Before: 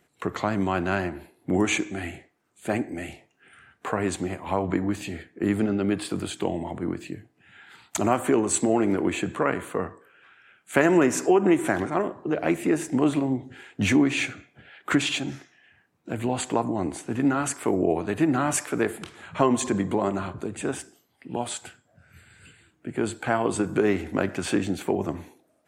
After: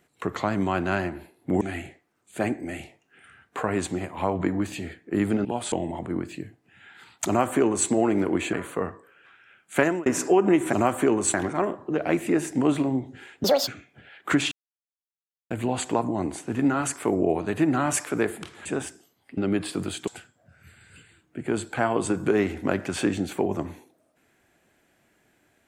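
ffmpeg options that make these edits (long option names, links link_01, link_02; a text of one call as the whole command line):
ffmpeg -i in.wav -filter_complex "[0:a]asplit=15[link_01][link_02][link_03][link_04][link_05][link_06][link_07][link_08][link_09][link_10][link_11][link_12][link_13][link_14][link_15];[link_01]atrim=end=1.612[link_16];[link_02]atrim=start=1.898:end=5.742[link_17];[link_03]atrim=start=21.298:end=21.572[link_18];[link_04]atrim=start=6.438:end=9.252[link_19];[link_05]atrim=start=9.508:end=11.04,asetpts=PTS-STARTPTS,afade=type=out:start_time=1.262:duration=0.27[link_20];[link_06]atrim=start=11.04:end=11.712,asetpts=PTS-STARTPTS,afade=type=in:duration=0.004:curve=hsin[link_21];[link_07]atrim=start=7.988:end=8.602[link_22];[link_08]atrim=start=11.708:end=13.814[link_23];[link_09]atrim=start=13.81:end=14.28,asetpts=PTS-STARTPTS,asetrate=88200,aresample=44100[link_24];[link_10]atrim=start=14.276:end=15.12,asetpts=PTS-STARTPTS,afade=type=out:start_time=0.84:duration=0.004:curve=hsin[link_25];[link_11]atrim=start=15.12:end=16.11,asetpts=PTS-STARTPTS,volume=0[link_26];[link_12]atrim=start=16.11:end=19.262,asetpts=PTS-STARTPTS,afade=type=in:duration=0.004:curve=hsin[link_27];[link_13]atrim=start=20.578:end=21.302[link_28];[link_14]atrim=start=5.738:end=6.442[link_29];[link_15]atrim=start=21.568[link_30];[link_16][link_17]acrossfade=duration=0.004:curve1=hsin:curve2=hsin[link_31];[link_31][link_18]acrossfade=duration=0.004:curve1=hsin:curve2=hsin[link_32];[link_32][link_19]acrossfade=duration=0.004:curve1=hsin:curve2=hsin[link_33];[link_20][link_21]concat=n=2:v=0:a=1[link_34];[link_33][link_34]acrossfade=duration=0.004:curve1=hsin:curve2=hsin[link_35];[link_35][link_22]acrossfade=duration=0.004:curve1=hsin:curve2=hsin[link_36];[link_36][link_23]acrossfade=duration=0.004:curve1=hsin:curve2=hsin[link_37];[link_37][link_24]acrossfade=duration=0.004:curve1=hsin:curve2=hsin[link_38];[link_25][link_26][link_27]concat=n=3:v=0:a=1[link_39];[link_38][link_39]acrossfade=duration=0.004:curve1=hsin:curve2=hsin[link_40];[link_40][link_28]acrossfade=duration=0.004:curve1=hsin:curve2=hsin[link_41];[link_41][link_29]acrossfade=duration=0.004:curve1=hsin:curve2=hsin[link_42];[link_42][link_30]acrossfade=duration=0.004:curve1=hsin:curve2=hsin" out.wav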